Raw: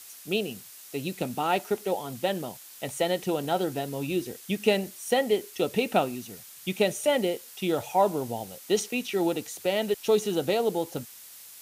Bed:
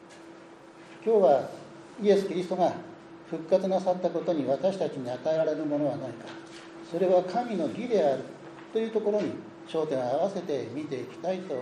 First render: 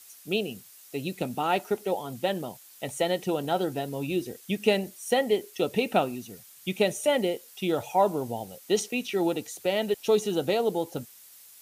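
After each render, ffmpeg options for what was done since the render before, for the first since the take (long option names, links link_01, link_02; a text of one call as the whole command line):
ffmpeg -i in.wav -af "afftdn=noise_reduction=6:noise_floor=-48" out.wav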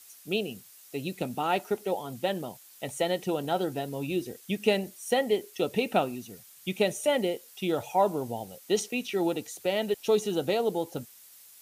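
ffmpeg -i in.wav -af "volume=-1.5dB" out.wav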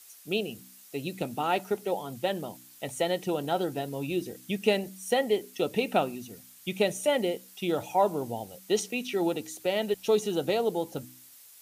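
ffmpeg -i in.wav -af "bandreject=frequency=63.1:width_type=h:width=4,bandreject=frequency=126.2:width_type=h:width=4,bandreject=frequency=189.3:width_type=h:width=4,bandreject=frequency=252.4:width_type=h:width=4,bandreject=frequency=315.5:width_type=h:width=4" out.wav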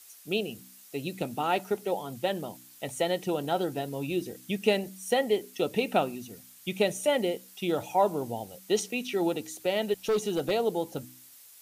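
ffmpeg -i in.wav -filter_complex "[0:a]asettb=1/sr,asplit=3[link_01][link_02][link_03];[link_01]atrim=end=10.024[link_04];[link_02]atrim=start=10.02:end=10.51,asetpts=PTS-STARTPTS,afade=type=in:duration=0.004:curve=qsin,afade=type=out:start_time=0.486:duration=0.004:curve=qsin,asoftclip=type=hard:threshold=-22dB[link_05];[link_03]atrim=start=10.506[link_06];[link_04][link_05]acrossfade=duration=0.004:curve1=hsin:curve2=qsin[link_07];[link_07][link_06]acrossfade=duration=0.004:curve1=qsin:curve2=hsin" out.wav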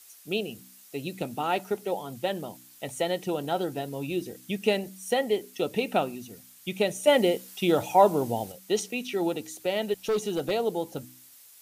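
ffmpeg -i in.wav -filter_complex "[0:a]asplit=3[link_01][link_02][link_03];[link_01]atrim=end=7.072[link_04];[link_02]atrim=start=7.068:end=8.522,asetpts=PTS-STARTPTS,volume=5.5dB[link_05];[link_03]atrim=start=8.518[link_06];[link_04][link_05]acrossfade=duration=0.004:curve1=hsin:curve2=hsin[link_07];[link_07][link_06]acrossfade=duration=0.004:curve1=hsin:curve2=hsin" out.wav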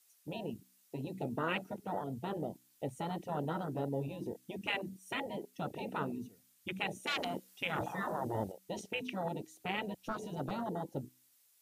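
ffmpeg -i in.wav -af "afwtdn=0.0224,afftfilt=real='re*lt(hypot(re,im),0.158)':imag='im*lt(hypot(re,im),0.158)':win_size=1024:overlap=0.75" out.wav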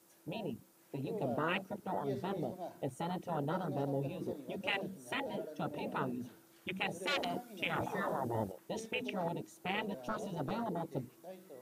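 ffmpeg -i in.wav -i bed.wav -filter_complex "[1:a]volume=-20dB[link_01];[0:a][link_01]amix=inputs=2:normalize=0" out.wav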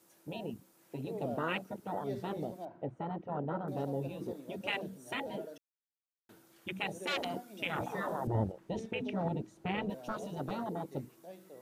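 ffmpeg -i in.wav -filter_complex "[0:a]asettb=1/sr,asplit=3[link_01][link_02][link_03];[link_01]atrim=end=2.654[link_04];[link_02]atrim=start=2.65:end=3.68,asetpts=PTS-STARTPTS,afade=type=in:duration=0.004:curve=qsin,afade=type=out:start_time=1.026:duration=0.004:curve=qsin,lowpass=1600[link_05];[link_03]atrim=start=3.676[link_06];[link_04][link_05]acrossfade=duration=0.004:curve1=hsin:curve2=qsin[link_07];[link_07][link_06]acrossfade=duration=0.004:curve1=qsin:curve2=hsin,asettb=1/sr,asplit=3[link_08][link_09][link_10];[link_08]atrim=end=8.274[link_11];[link_09]atrim=start=8.27:end=9.9,asetpts=PTS-STARTPTS,afade=type=in:duration=0.004:curve=qsin,afade=type=out:start_time=1.626:duration=0.004:curve=qsin,aemphasis=mode=reproduction:type=bsi[link_12];[link_10]atrim=start=9.896[link_13];[link_11][link_12]acrossfade=duration=0.004:curve1=hsin:curve2=qsin[link_14];[link_14][link_13]acrossfade=duration=0.004:curve1=qsin:curve2=hsin,asplit=3[link_15][link_16][link_17];[link_15]atrim=end=5.58,asetpts=PTS-STARTPTS,afade=type=out:start_time=5.576:duration=0.004:curve=hsin[link_18];[link_16]atrim=start=5.58:end=6.29,asetpts=PTS-STARTPTS,volume=0[link_19];[link_17]atrim=start=6.29,asetpts=PTS-STARTPTS,afade=type=in:duration=0.004:curve=hsin[link_20];[link_18][link_19][link_20]concat=n=3:v=0:a=1" out.wav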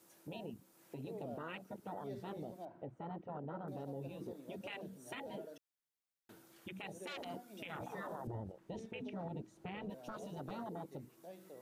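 ffmpeg -i in.wav -af "acompressor=threshold=-53dB:ratio=1.5,alimiter=level_in=11.5dB:limit=-24dB:level=0:latency=1:release=47,volume=-11.5dB" out.wav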